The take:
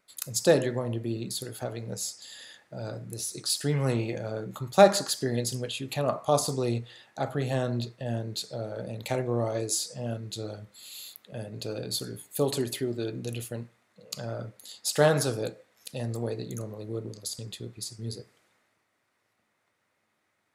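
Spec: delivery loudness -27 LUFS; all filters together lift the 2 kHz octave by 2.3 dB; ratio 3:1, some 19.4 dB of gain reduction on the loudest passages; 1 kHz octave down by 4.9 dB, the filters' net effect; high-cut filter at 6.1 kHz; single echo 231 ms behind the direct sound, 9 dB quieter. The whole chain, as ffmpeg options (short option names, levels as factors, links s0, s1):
-af "lowpass=6100,equalizer=f=1000:t=o:g=-8.5,equalizer=f=2000:t=o:g=6,acompressor=threshold=0.00891:ratio=3,aecho=1:1:231:0.355,volume=5.62"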